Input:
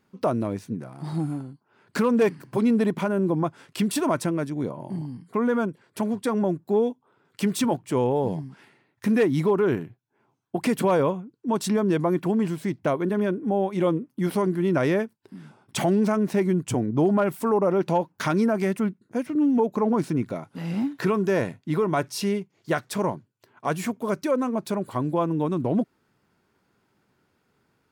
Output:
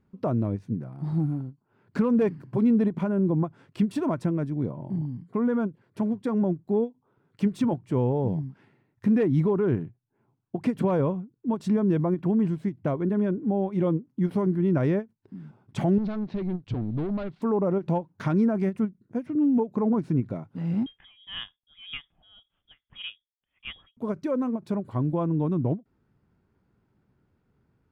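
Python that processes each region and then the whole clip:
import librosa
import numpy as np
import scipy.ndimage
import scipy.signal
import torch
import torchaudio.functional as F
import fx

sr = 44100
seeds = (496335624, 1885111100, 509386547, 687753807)

y = fx.chain(x, sr, fx.leveller(passes=2),
    fx.ladder_lowpass(hz=4600.0, resonance_pct=60), at=(15.98, 17.42))
y = fx.chain(y, sr, fx.freq_invert(carrier_hz=3500),
    fx.tremolo_db(hz=1.8, depth_db=24), at=(20.86, 23.97))
y = fx.riaa(y, sr, side='playback')
y = fx.end_taper(y, sr, db_per_s=360.0)
y = y * 10.0 ** (-7.0 / 20.0)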